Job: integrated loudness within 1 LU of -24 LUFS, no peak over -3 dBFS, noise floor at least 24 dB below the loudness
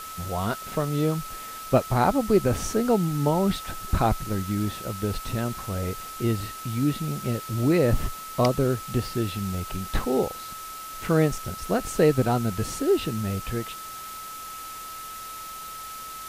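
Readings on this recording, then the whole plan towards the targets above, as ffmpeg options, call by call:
steady tone 1300 Hz; tone level -37 dBFS; noise floor -38 dBFS; noise floor target -51 dBFS; loudness -26.5 LUFS; peak -9.0 dBFS; loudness target -24.0 LUFS
-> -af "bandreject=f=1.3k:w=30"
-af "afftdn=nr=13:nf=-38"
-af "volume=2.5dB"

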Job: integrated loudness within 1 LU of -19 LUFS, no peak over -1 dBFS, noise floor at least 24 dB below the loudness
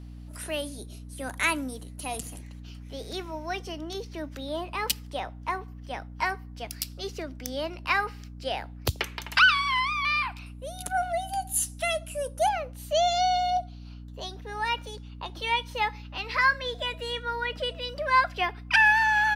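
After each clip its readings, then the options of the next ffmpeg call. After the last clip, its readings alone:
hum 60 Hz; harmonics up to 300 Hz; hum level -40 dBFS; loudness -27.5 LUFS; peak -8.0 dBFS; loudness target -19.0 LUFS
-> -af "bandreject=f=60:t=h:w=4,bandreject=f=120:t=h:w=4,bandreject=f=180:t=h:w=4,bandreject=f=240:t=h:w=4,bandreject=f=300:t=h:w=4"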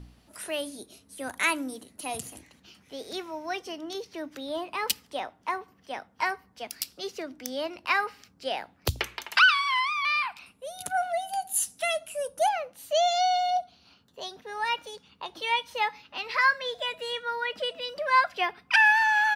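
hum none; loudness -27.5 LUFS; peak -7.5 dBFS; loudness target -19.0 LUFS
-> -af "volume=8.5dB,alimiter=limit=-1dB:level=0:latency=1"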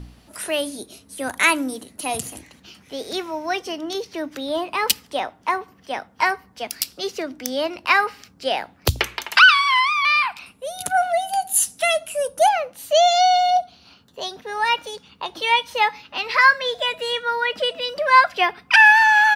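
loudness -19.0 LUFS; peak -1.0 dBFS; noise floor -54 dBFS

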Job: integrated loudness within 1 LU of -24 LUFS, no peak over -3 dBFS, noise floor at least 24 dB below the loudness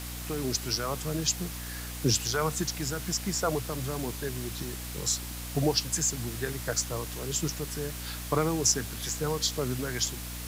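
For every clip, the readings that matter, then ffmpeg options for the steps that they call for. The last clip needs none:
hum 60 Hz; harmonics up to 300 Hz; hum level -38 dBFS; noise floor -38 dBFS; noise floor target -54 dBFS; loudness -30.0 LUFS; peak -10.5 dBFS; loudness target -24.0 LUFS
-> -af "bandreject=f=60:t=h:w=6,bandreject=f=120:t=h:w=6,bandreject=f=180:t=h:w=6,bandreject=f=240:t=h:w=6,bandreject=f=300:t=h:w=6"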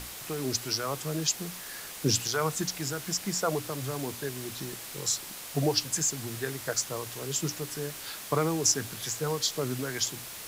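hum none; noise floor -42 dBFS; noise floor target -55 dBFS
-> -af "afftdn=nr=13:nf=-42"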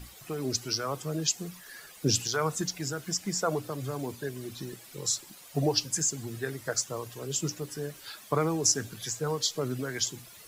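noise floor -51 dBFS; noise floor target -55 dBFS
-> -af "afftdn=nr=6:nf=-51"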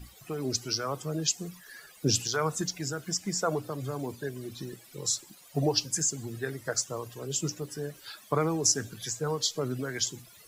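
noise floor -54 dBFS; noise floor target -55 dBFS
-> -af "afftdn=nr=6:nf=-54"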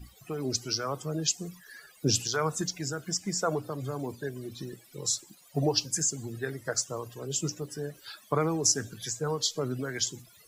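noise floor -57 dBFS; loudness -30.5 LUFS; peak -10.5 dBFS; loudness target -24.0 LUFS
-> -af "volume=6.5dB"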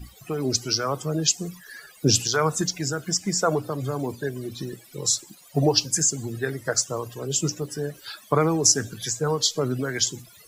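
loudness -24.0 LUFS; peak -4.0 dBFS; noise floor -51 dBFS

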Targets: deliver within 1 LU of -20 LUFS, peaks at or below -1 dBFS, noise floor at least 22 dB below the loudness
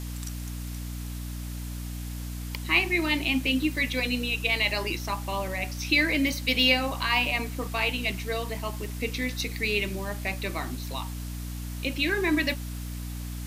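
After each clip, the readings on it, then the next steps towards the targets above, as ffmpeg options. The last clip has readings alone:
hum 60 Hz; harmonics up to 300 Hz; hum level -33 dBFS; noise floor -35 dBFS; noise floor target -50 dBFS; loudness -27.5 LUFS; peak -8.5 dBFS; loudness target -20.0 LUFS
-> -af "bandreject=f=60:t=h:w=6,bandreject=f=120:t=h:w=6,bandreject=f=180:t=h:w=6,bandreject=f=240:t=h:w=6,bandreject=f=300:t=h:w=6"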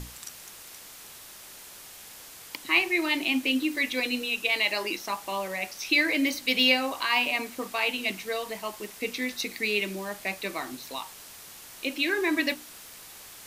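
hum none; noise floor -47 dBFS; noise floor target -49 dBFS
-> -af "afftdn=nr=6:nf=-47"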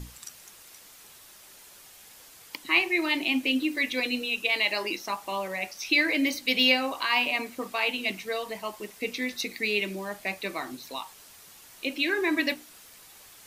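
noise floor -51 dBFS; loudness -27.0 LUFS; peak -9.0 dBFS; loudness target -20.0 LUFS
-> -af "volume=7dB"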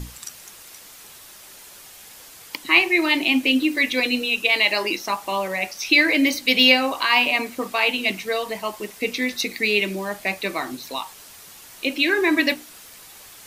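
loudness -20.0 LUFS; peak -2.0 dBFS; noise floor -44 dBFS

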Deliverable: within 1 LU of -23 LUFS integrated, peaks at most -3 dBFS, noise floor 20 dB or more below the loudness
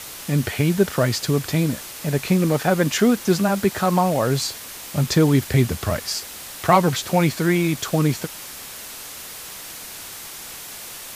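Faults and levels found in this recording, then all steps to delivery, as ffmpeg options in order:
noise floor -37 dBFS; noise floor target -41 dBFS; loudness -20.5 LUFS; peak -2.5 dBFS; loudness target -23.0 LUFS
-> -af "afftdn=nr=6:nf=-37"
-af "volume=-2.5dB"

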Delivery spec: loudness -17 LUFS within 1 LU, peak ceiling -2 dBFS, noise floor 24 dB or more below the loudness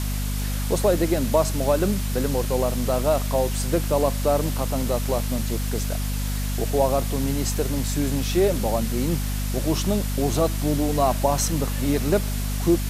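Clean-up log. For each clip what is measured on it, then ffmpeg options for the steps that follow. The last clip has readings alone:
hum 50 Hz; harmonics up to 250 Hz; hum level -23 dBFS; noise floor -26 dBFS; noise floor target -48 dBFS; loudness -23.5 LUFS; peak -6.5 dBFS; loudness target -17.0 LUFS
-> -af "bandreject=f=50:t=h:w=4,bandreject=f=100:t=h:w=4,bandreject=f=150:t=h:w=4,bandreject=f=200:t=h:w=4,bandreject=f=250:t=h:w=4"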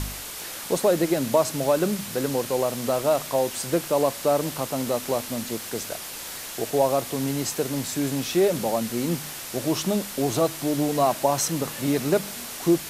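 hum none; noise floor -36 dBFS; noise floor target -49 dBFS
-> -af "afftdn=nr=13:nf=-36"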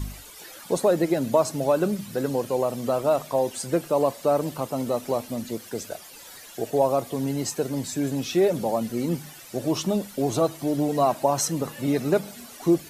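noise floor -45 dBFS; noise floor target -50 dBFS
-> -af "afftdn=nr=6:nf=-45"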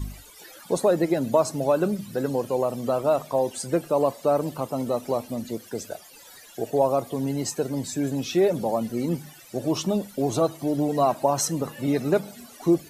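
noise floor -48 dBFS; noise floor target -50 dBFS
-> -af "afftdn=nr=6:nf=-48"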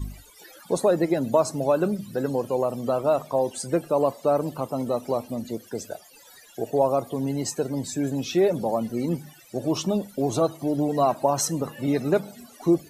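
noise floor -51 dBFS; loudness -25.5 LUFS; peak -8.0 dBFS; loudness target -17.0 LUFS
-> -af "volume=8.5dB,alimiter=limit=-2dB:level=0:latency=1"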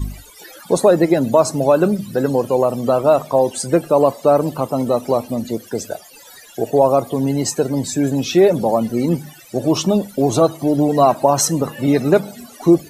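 loudness -17.0 LUFS; peak -2.0 dBFS; noise floor -42 dBFS

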